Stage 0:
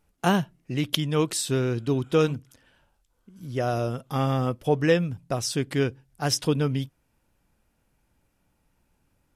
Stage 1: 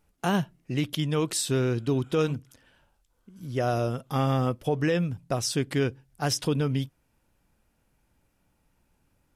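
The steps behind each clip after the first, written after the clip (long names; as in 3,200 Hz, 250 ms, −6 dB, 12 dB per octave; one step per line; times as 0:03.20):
brickwall limiter −16 dBFS, peak gain reduction 10 dB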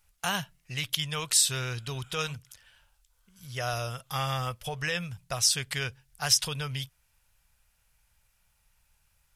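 guitar amp tone stack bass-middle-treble 10-0-10
level +7.5 dB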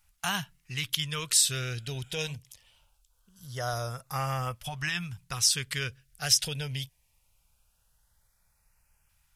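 auto-filter notch saw up 0.22 Hz 420–4,000 Hz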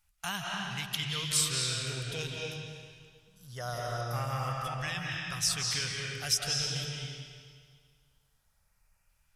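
convolution reverb RT60 1.9 s, pre-delay 134 ms, DRR −2.5 dB
level −5.5 dB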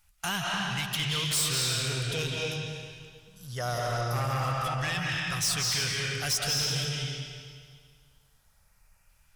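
soft clipping −31.5 dBFS, distortion −9 dB
level +7.5 dB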